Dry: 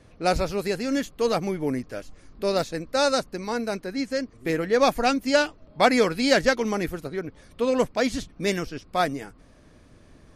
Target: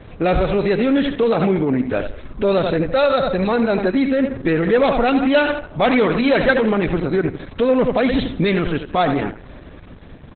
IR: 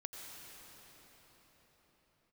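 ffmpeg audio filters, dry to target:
-filter_complex "[0:a]asplit=2[a][b];[b]adelay=82,lowpass=f=3.7k:p=1,volume=-12dB,asplit=2[c][d];[d]adelay=82,lowpass=f=3.7k:p=1,volume=0.36,asplit=2[e][f];[f]adelay=82,lowpass=f=3.7k:p=1,volume=0.36,asplit=2[g][h];[h]adelay=82,lowpass=f=3.7k:p=1,volume=0.36[i];[c][e][g][i]amix=inputs=4:normalize=0[j];[a][j]amix=inputs=2:normalize=0,asoftclip=type=tanh:threshold=-17dB,dynaudnorm=f=130:g=17:m=3dB,asettb=1/sr,asplit=3[k][l][m];[k]atrim=end=1.234[n];[l]atrim=start=1.23:end=1.93,asetpts=PTS-STARTPTS,afade=t=in:d=0.004:c=qsin,afade=t=out:st=0.696:d=0.004:c=qsin,highpass=f=73:w=0.5412,highpass=f=73:w=1.3066[o];[m]atrim=start=1.926[p];[n][o]acrossfade=d=0.004:c1=hsin:c2=qsin[q];[q][p]acrossfade=d=0.004:c1=qsin:c2=hsin,asplit=3[r][s][t];[r]afade=t=out:st=2.86:d=0.02[u];[s]aecho=1:1:1.6:0.43,afade=t=in:st=2.86:d=0.02,afade=t=out:st=3.57:d=0.02[v];[t]afade=t=in:st=3.57:d=0.02[w];[u][v][w]amix=inputs=3:normalize=0,asplit=2[x][y];[y]acompressor=threshold=-24dB:ratio=12,volume=0.5dB[z];[x][z]amix=inputs=2:normalize=0,aresample=32000,aresample=44100,alimiter=limit=-17.5dB:level=0:latency=1:release=52,asplit=3[aa][ab][ac];[aa]afade=t=out:st=6.18:d=0.02[ad];[ab]bandreject=f=50:t=h:w=6,bandreject=f=100:t=h:w=6,bandreject=f=150:t=h:w=6,bandreject=f=200:t=h:w=6,bandreject=f=250:t=h:w=6,bandreject=f=300:t=h:w=6,bandreject=f=350:t=h:w=6,bandreject=f=400:t=h:w=6,bandreject=f=450:t=h:w=6,afade=t=in:st=6.18:d=0.02,afade=t=out:st=6.69:d=0.02[ae];[ac]afade=t=in:st=6.69:d=0.02[af];[ad][ae][af]amix=inputs=3:normalize=0,volume=8.5dB" -ar 48000 -c:a libopus -b:a 8k

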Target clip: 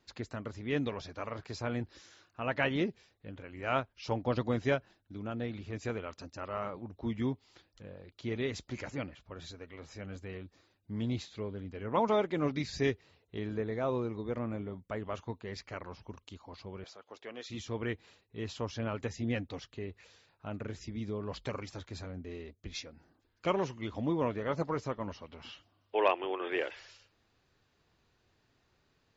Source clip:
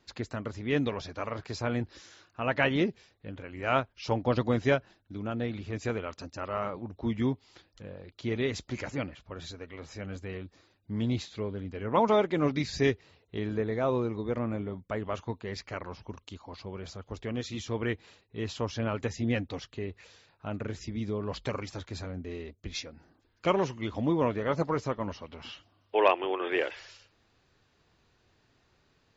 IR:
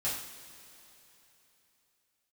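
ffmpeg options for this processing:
-filter_complex "[0:a]asettb=1/sr,asplit=3[a][b][c];[a]atrim=end=16.844[d];[b]atrim=start=16.84:end=17.5,asetpts=PTS-STARTPTS,afade=t=in:d=0.004:c=qsin,afade=t=out:st=0.656:d=0.004:c=qsin,highpass=470,lowpass=6.1k[e];[c]atrim=start=17.496[f];[d][e]acrossfade=d=0.004:c1=hsin:c2=qsin[g];[g][f]acrossfade=d=0.004:c1=qsin:c2=hsin,volume=-4.5dB"

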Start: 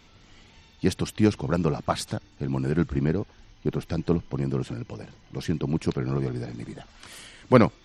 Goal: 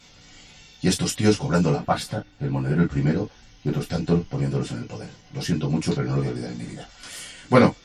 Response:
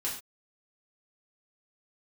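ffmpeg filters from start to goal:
-filter_complex "[0:a]asetnsamples=n=441:p=0,asendcmd='1.75 equalizer g -5.5;2.9 equalizer g 5.5',equalizer=f=7.1k:w=0.72:g=8.5[a];[1:a]atrim=start_sample=2205,afade=t=out:st=0.14:d=0.01,atrim=end_sample=6615,asetrate=79380,aresample=44100[b];[a][b]afir=irnorm=-1:irlink=0,volume=5.5dB"

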